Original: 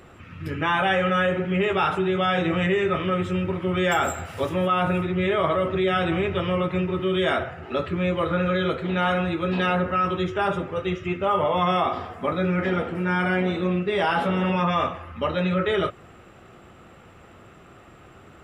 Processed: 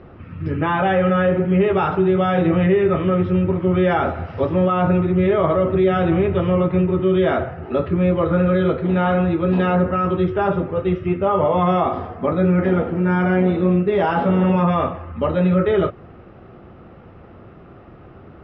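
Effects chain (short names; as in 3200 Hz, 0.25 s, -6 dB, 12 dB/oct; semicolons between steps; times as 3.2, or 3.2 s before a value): elliptic low-pass 5300 Hz, stop band 40 dB; tilt shelf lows +9 dB, about 1500 Hz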